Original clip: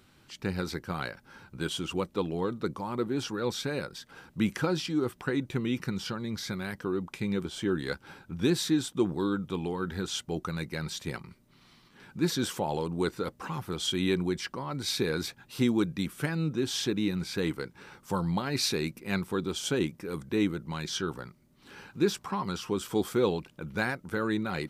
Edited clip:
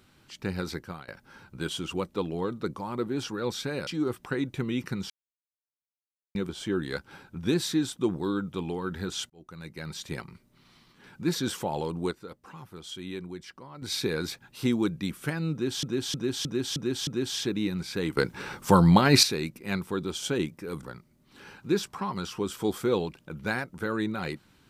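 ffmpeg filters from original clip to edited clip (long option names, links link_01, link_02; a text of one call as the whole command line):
ffmpeg -i in.wav -filter_complex "[0:a]asplit=16[link_01][link_02][link_03][link_04][link_05][link_06][link_07][link_08][link_09][link_10][link_11][link_12][link_13][link_14][link_15][link_16];[link_01]atrim=end=1.08,asetpts=PTS-STARTPTS,afade=type=out:start_time=0.78:duration=0.3:silence=0.0668344[link_17];[link_02]atrim=start=1.08:end=3.872,asetpts=PTS-STARTPTS,afade=type=in:duration=0.004:curve=hsin:silence=0.0668344[link_18];[link_03]atrim=start=4.828:end=6.06,asetpts=PTS-STARTPTS,afade=type=out:start_time=1.228:duration=0.004:curve=hsin[link_19];[link_04]atrim=start=6.06:end=7.31,asetpts=PTS-STARTPTS,volume=0[link_20];[link_05]atrim=start=7.31:end=10.26,asetpts=PTS-STARTPTS,afade=type=in:duration=0.004:curve=hsin,afade=type=out:start_time=2.946:duration=0.004:curve=hsin[link_21];[link_06]atrim=start=10.26:end=13.07,asetpts=PTS-STARTPTS,afade=type=in:duration=0.82,afade=type=out:start_time=2.64:duration=0.17:curve=log:silence=0.316228[link_22];[link_07]atrim=start=13.07:end=14.78,asetpts=PTS-STARTPTS,volume=-10dB[link_23];[link_08]atrim=start=14.78:end=16.792,asetpts=PTS-STARTPTS,afade=type=in:duration=0.17:curve=log:silence=0.316228[link_24];[link_09]atrim=start=16.478:end=16.792[link_25];[link_10]atrim=start=16.478:end=16.792[link_26];[link_11]atrim=start=16.478:end=16.792[link_27];[link_12]atrim=start=16.478:end=16.792[link_28];[link_13]atrim=start=16.478:end=17.582[link_29];[link_14]atrim=start=17.578:end=18.642,asetpts=PTS-STARTPTS,volume=11.5dB[link_30];[link_15]atrim=start=18.638:end=20.242[link_31];[link_16]atrim=start=21.138[link_32];[link_17][link_18]concat=n=2:v=0:a=1[link_33];[link_19][link_20][link_21][link_22][link_23][link_24]concat=n=6:v=0:a=1[link_34];[link_33][link_34]acrossfade=duration=0.004:curve1=hsin:curve2=hsin[link_35];[link_35][link_25]acrossfade=duration=0.004:curve1=hsin:curve2=hsin[link_36];[link_36][link_26]acrossfade=duration=0.004:curve1=hsin:curve2=hsin[link_37];[link_37][link_27]acrossfade=duration=0.004:curve1=hsin:curve2=hsin[link_38];[link_38][link_28]acrossfade=duration=0.004:curve1=hsin:curve2=hsin[link_39];[link_39][link_29]acrossfade=duration=0.004:curve1=hsin:curve2=hsin[link_40];[link_40][link_30]acrossfade=duration=0.004:curve1=hsin:curve2=hsin[link_41];[link_41][link_31]acrossfade=duration=0.004:curve1=hsin:curve2=hsin[link_42];[link_42][link_32]acrossfade=duration=0.004:curve1=hsin:curve2=hsin" out.wav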